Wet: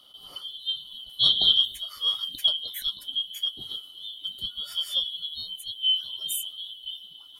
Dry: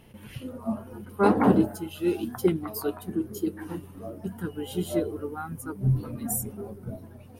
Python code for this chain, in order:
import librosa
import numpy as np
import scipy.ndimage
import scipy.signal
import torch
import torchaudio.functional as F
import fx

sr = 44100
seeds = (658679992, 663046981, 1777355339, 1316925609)

y = fx.band_shuffle(x, sr, order='2413')
y = y * 10.0 ** (-1.0 / 20.0)